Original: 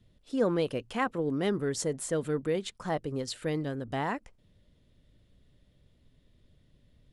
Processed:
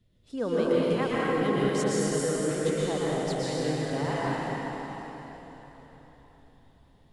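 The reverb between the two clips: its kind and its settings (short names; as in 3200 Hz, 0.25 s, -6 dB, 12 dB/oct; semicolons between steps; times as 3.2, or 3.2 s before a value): plate-style reverb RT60 4.2 s, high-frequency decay 0.9×, pre-delay 0.105 s, DRR -8 dB; gain -4.5 dB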